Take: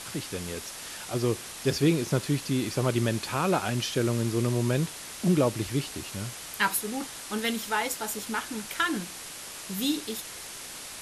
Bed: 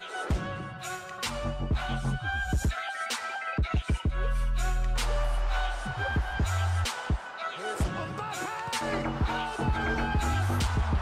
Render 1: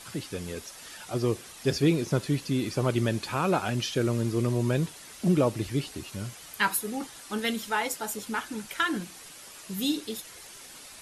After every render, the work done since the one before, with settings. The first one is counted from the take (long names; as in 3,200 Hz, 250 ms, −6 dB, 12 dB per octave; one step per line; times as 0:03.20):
broadband denoise 8 dB, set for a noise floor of −41 dBFS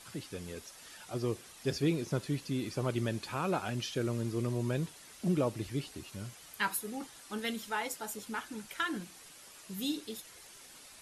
level −7 dB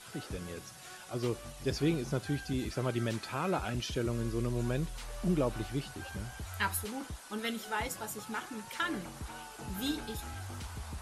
mix in bed −15.5 dB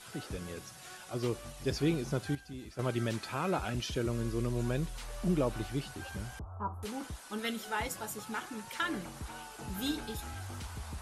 0:02.35–0:02.79: clip gain −10.5 dB
0:06.39–0:06.83: elliptic low-pass filter 1,200 Hz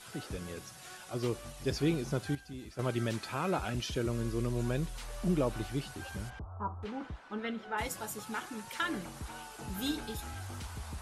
0:06.29–0:07.77: low-pass filter 3,400 Hz → 1,900 Hz